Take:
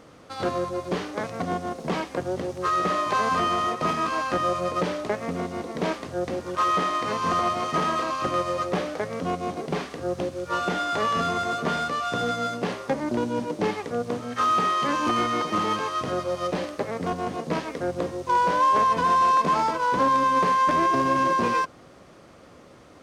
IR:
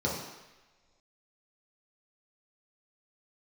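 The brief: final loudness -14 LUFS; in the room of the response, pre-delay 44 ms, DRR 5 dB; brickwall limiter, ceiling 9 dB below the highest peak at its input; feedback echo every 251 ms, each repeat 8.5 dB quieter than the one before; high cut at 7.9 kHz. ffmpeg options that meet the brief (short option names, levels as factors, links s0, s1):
-filter_complex "[0:a]lowpass=7900,alimiter=limit=0.1:level=0:latency=1,aecho=1:1:251|502|753|1004:0.376|0.143|0.0543|0.0206,asplit=2[s0][s1];[1:a]atrim=start_sample=2205,adelay=44[s2];[s1][s2]afir=irnorm=-1:irlink=0,volume=0.2[s3];[s0][s3]amix=inputs=2:normalize=0,volume=3.76"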